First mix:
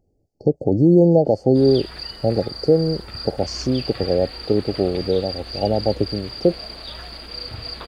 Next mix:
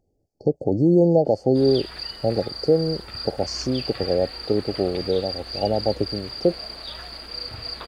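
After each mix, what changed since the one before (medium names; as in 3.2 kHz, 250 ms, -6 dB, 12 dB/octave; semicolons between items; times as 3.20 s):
second sound: add peaking EQ 3.4 kHz -5 dB 1 oct; master: add bass shelf 450 Hz -5 dB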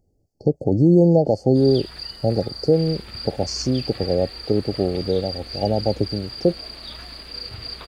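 first sound -4.0 dB; second sound: entry -0.65 s; master: add tone controls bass +6 dB, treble +5 dB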